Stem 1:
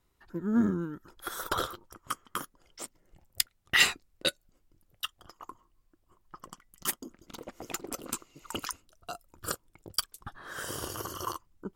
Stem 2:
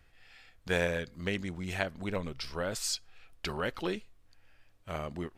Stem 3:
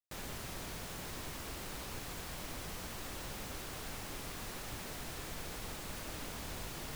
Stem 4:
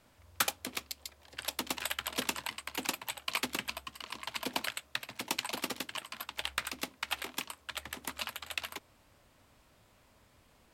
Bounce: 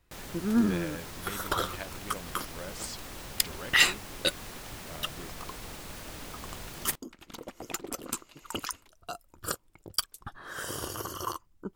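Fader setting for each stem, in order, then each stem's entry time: +1.0, -9.0, +1.0, -19.5 dB; 0.00, 0.00, 0.00, 0.10 s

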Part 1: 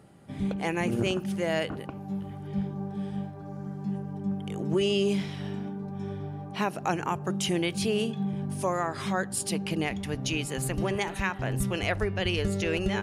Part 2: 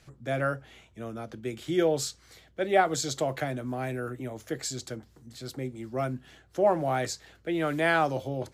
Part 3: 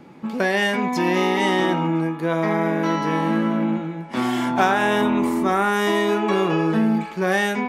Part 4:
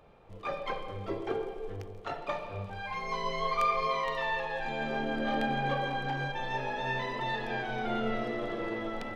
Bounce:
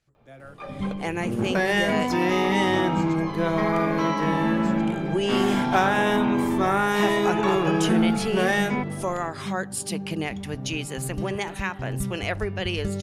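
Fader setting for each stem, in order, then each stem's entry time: +0.5, -17.0, -2.5, -3.5 dB; 0.40, 0.00, 1.15, 0.15 s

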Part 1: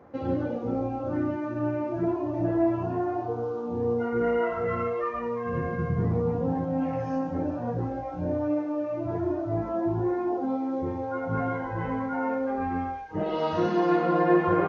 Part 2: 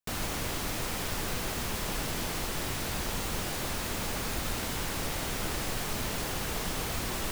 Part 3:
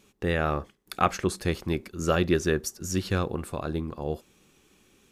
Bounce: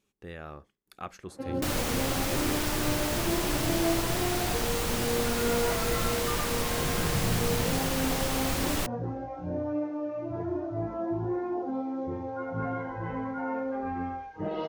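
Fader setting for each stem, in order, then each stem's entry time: -4.0, +3.0, -16.0 dB; 1.25, 1.55, 0.00 s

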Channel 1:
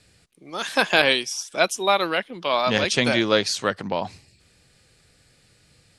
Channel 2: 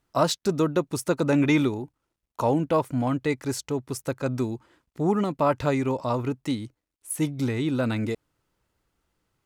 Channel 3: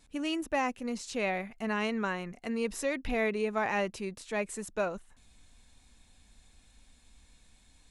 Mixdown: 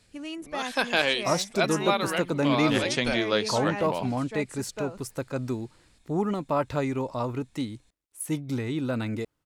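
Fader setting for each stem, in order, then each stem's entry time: -6.0, -3.5, -4.0 dB; 0.00, 1.10, 0.00 s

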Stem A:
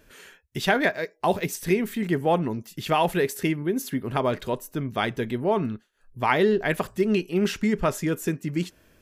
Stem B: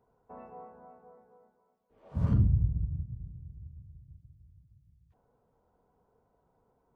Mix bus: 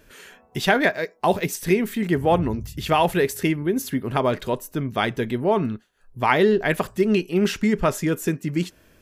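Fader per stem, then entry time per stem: +3.0, -8.5 dB; 0.00, 0.00 s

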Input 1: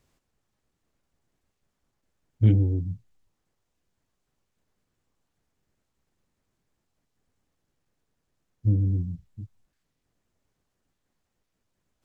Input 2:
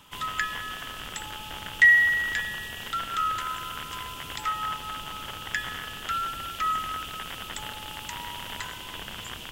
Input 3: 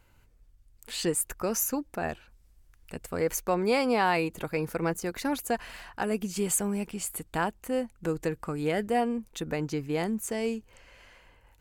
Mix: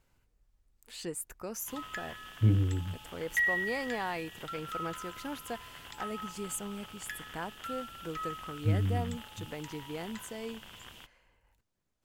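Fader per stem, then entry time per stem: -6.0, -12.0, -10.5 dB; 0.00, 1.55, 0.00 s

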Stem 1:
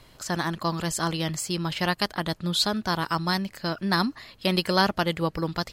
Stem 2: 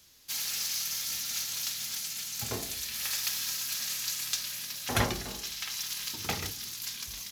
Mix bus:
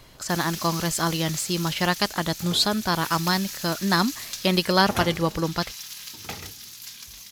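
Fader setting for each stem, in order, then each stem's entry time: +2.5, -2.5 dB; 0.00, 0.00 s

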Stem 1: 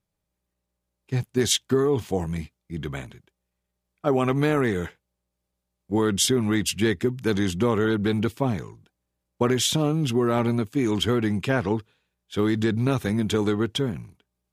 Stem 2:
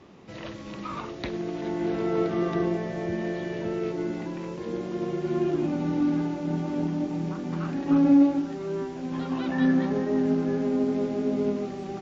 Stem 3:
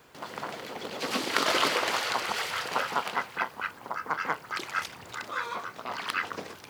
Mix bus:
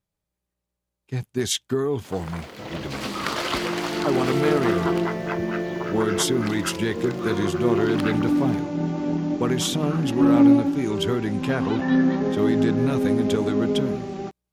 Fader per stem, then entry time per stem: -2.5, +3.0, -2.0 dB; 0.00, 2.30, 1.90 s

